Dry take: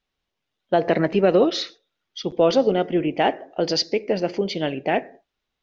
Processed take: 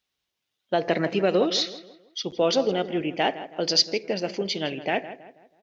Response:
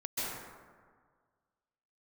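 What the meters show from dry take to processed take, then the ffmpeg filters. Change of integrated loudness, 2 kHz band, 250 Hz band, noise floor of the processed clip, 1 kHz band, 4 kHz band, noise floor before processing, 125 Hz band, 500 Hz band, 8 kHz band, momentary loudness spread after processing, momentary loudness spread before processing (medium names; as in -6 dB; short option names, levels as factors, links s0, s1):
-3.5 dB, -1.0 dB, -5.0 dB, -82 dBFS, -4.0 dB, +3.0 dB, -81 dBFS, -5.0 dB, -5.0 dB, no reading, 11 LU, 10 LU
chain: -filter_complex "[0:a]highpass=58,highshelf=f=2600:g=11.5,asplit=2[s0][s1];[s1]adelay=162,lowpass=f=2300:p=1,volume=0.224,asplit=2[s2][s3];[s3]adelay=162,lowpass=f=2300:p=1,volume=0.41,asplit=2[s4][s5];[s5]adelay=162,lowpass=f=2300:p=1,volume=0.41,asplit=2[s6][s7];[s7]adelay=162,lowpass=f=2300:p=1,volume=0.41[s8];[s2][s4][s6][s8]amix=inputs=4:normalize=0[s9];[s0][s9]amix=inputs=2:normalize=0,volume=0.531"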